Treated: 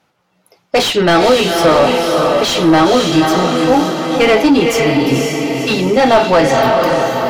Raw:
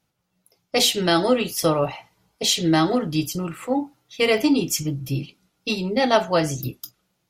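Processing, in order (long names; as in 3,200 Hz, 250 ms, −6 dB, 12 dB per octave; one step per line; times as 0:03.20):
feedback delay with all-pass diffusion 513 ms, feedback 51%, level −6 dB
mid-hump overdrive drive 23 dB, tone 1,300 Hz, clips at −4 dBFS
level +4 dB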